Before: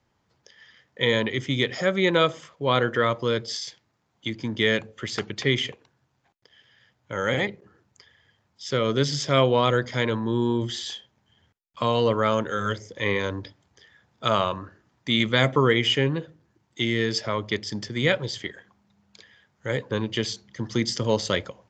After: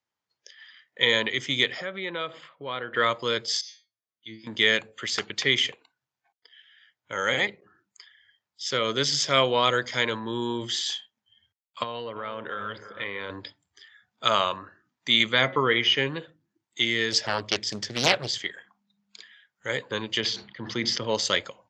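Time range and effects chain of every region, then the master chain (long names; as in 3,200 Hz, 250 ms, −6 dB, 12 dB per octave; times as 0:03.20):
0:01.72–0:02.97: high-frequency loss of the air 190 metres + downward compressor 2 to 1, threshold −33 dBFS
0:03.61–0:04.47: Butterworth low-pass 6,600 Hz 96 dB per octave + parametric band 890 Hz −14.5 dB 0.21 octaves + tuned comb filter 110 Hz, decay 0.35 s, mix 100%
0:11.83–0:13.30: high-frequency loss of the air 230 metres + downward compressor 10 to 1, threshold −27 dBFS + delay with a low-pass on its return 330 ms, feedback 44%, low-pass 2,300 Hz, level −12.5 dB
0:15.33–0:15.98: linear-phase brick-wall low-pass 6,700 Hz + high-shelf EQ 5,000 Hz −11 dB + hum removal 182.7 Hz, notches 11
0:17.12–0:18.38: low-shelf EQ 200 Hz +7.5 dB + highs frequency-modulated by the lows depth 0.94 ms
0:20.20–0:21.15: high-frequency loss of the air 210 metres + level that may fall only so fast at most 76 dB per second
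whole clip: spectral tilt +3.5 dB per octave; noise reduction from a noise print of the clip's start 16 dB; high-shelf EQ 7,100 Hz −10.5 dB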